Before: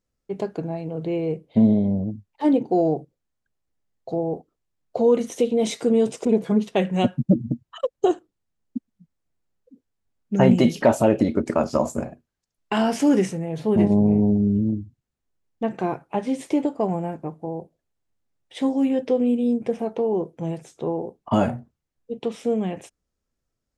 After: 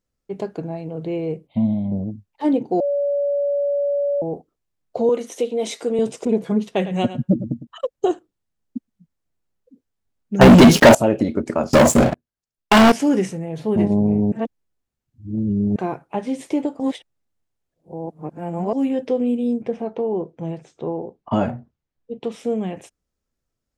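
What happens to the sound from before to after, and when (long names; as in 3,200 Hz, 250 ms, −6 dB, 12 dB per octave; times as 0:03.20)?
0:01.47–0:01.92: phaser with its sweep stopped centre 1,600 Hz, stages 6
0:02.80–0:04.22: beep over 570 Hz −17.5 dBFS
0:05.09–0:05.99: high-pass filter 320 Hz
0:06.69–0:07.67: single-tap delay 106 ms −13 dB
0:10.41–0:10.95: leveller curve on the samples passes 5
0:11.73–0:12.92: leveller curve on the samples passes 5
0:14.32–0:15.76: reverse
0:16.80–0:18.73: reverse
0:19.62–0:22.24: high-frequency loss of the air 96 metres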